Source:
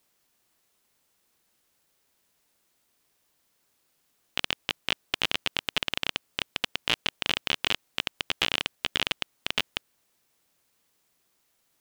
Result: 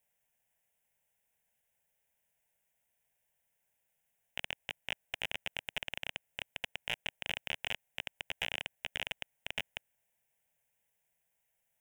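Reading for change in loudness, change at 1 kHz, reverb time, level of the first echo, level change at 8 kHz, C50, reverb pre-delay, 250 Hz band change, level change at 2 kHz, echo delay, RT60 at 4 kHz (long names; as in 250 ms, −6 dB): −10.5 dB, −11.5 dB, no reverb audible, no echo audible, −12.0 dB, no reverb audible, no reverb audible, −15.5 dB, −8.0 dB, no echo audible, no reverb audible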